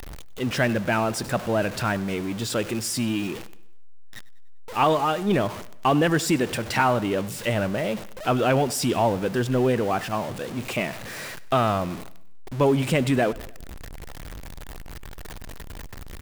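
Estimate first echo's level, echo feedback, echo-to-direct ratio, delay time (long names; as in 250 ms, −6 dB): −20.5 dB, 48%, −19.5 dB, 98 ms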